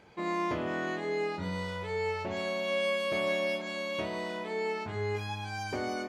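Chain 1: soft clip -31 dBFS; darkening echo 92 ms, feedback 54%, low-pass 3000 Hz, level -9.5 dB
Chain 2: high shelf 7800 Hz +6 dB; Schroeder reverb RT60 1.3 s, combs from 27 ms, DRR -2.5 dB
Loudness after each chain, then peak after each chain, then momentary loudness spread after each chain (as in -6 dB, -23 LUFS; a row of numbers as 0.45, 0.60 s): -35.0, -26.5 LUFS; -27.0, -13.0 dBFS; 6, 11 LU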